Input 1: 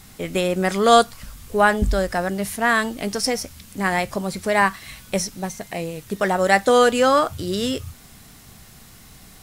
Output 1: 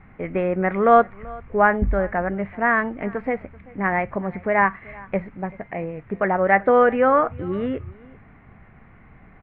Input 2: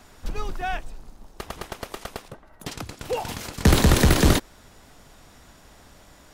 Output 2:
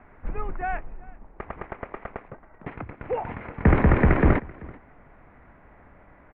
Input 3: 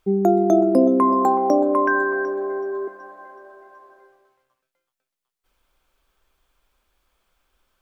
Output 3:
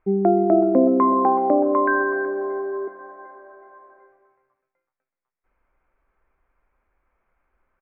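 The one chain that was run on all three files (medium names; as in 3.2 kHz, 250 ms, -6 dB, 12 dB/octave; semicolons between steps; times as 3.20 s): elliptic low-pass 2.2 kHz, stop band 60 dB; delay 385 ms -22.5 dB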